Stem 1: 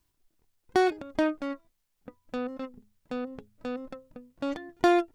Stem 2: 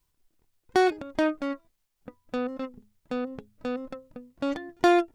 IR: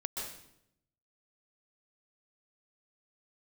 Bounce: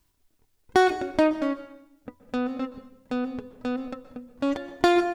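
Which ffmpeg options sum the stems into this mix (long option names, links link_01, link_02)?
-filter_complex "[0:a]volume=2.5dB,asplit=2[link_01][link_02];[link_02]volume=-9.5dB[link_03];[1:a]volume=-1,adelay=5.8,volume=-7dB[link_04];[2:a]atrim=start_sample=2205[link_05];[link_03][link_05]afir=irnorm=-1:irlink=0[link_06];[link_01][link_04][link_06]amix=inputs=3:normalize=0"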